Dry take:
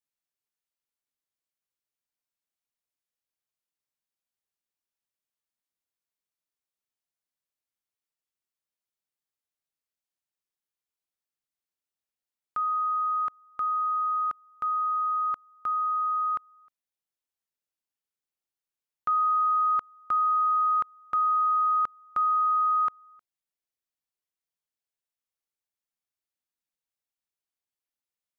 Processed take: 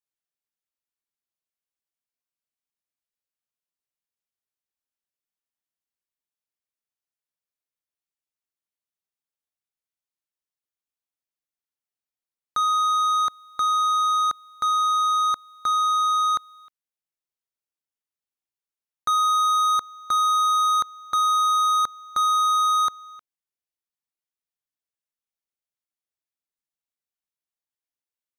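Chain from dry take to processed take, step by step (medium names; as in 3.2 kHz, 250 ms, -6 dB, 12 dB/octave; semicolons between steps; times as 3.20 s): waveshaping leveller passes 3; trim +2 dB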